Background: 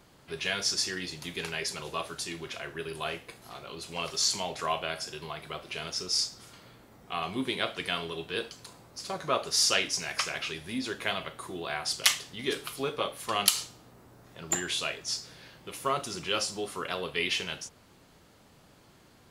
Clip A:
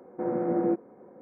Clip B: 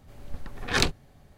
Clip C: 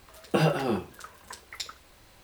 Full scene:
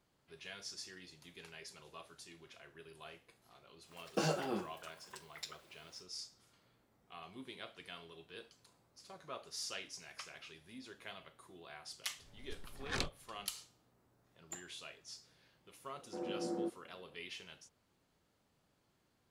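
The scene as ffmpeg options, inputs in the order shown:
ffmpeg -i bed.wav -i cue0.wav -i cue1.wav -i cue2.wav -filter_complex "[0:a]volume=-18.5dB[link_01];[3:a]highpass=170[link_02];[2:a]equalizer=frequency=14000:width=3.3:gain=-14[link_03];[1:a]highpass=frequency=140:width=0.5412,highpass=frequency=140:width=1.3066[link_04];[link_02]atrim=end=2.23,asetpts=PTS-STARTPTS,volume=-10dB,afade=type=in:duration=0.1,afade=type=out:start_time=2.13:duration=0.1,adelay=3830[link_05];[link_03]atrim=end=1.37,asetpts=PTS-STARTPTS,volume=-14.5dB,afade=type=in:duration=0.004:curve=hsin,afade=type=out:start_time=1.366:duration=0.004:curve=hsin,adelay=12180[link_06];[link_04]atrim=end=1.21,asetpts=PTS-STARTPTS,volume=-13dB,afade=type=in:duration=0.004:curve=hsin,afade=type=out:start_time=1.206:duration=0.004:curve=hsin,adelay=15940[link_07];[link_01][link_05][link_06][link_07]amix=inputs=4:normalize=0" out.wav

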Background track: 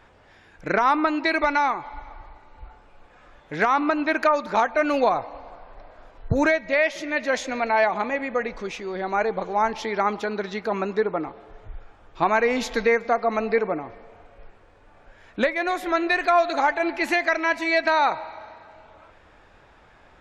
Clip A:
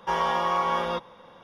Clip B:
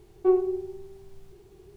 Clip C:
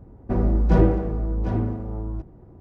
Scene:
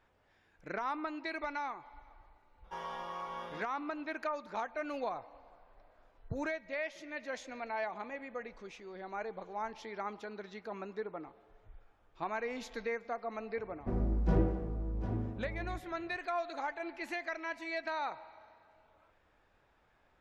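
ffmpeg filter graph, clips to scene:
ffmpeg -i bed.wav -i cue0.wav -i cue1.wav -i cue2.wav -filter_complex "[0:a]volume=-17dB[link_01];[1:a]atrim=end=1.43,asetpts=PTS-STARTPTS,volume=-17dB,afade=type=in:duration=0.004:curve=hsin,afade=type=out:start_time=1.426:duration=0.004:curve=hsin,adelay=2640[link_02];[3:a]atrim=end=2.6,asetpts=PTS-STARTPTS,volume=-12dB,afade=type=in:duration=0.004:curve=hsin,afade=type=out:start_time=2.596:duration=0.004:curve=hsin,adelay=13570[link_03];[link_01][link_02][link_03]amix=inputs=3:normalize=0" out.wav

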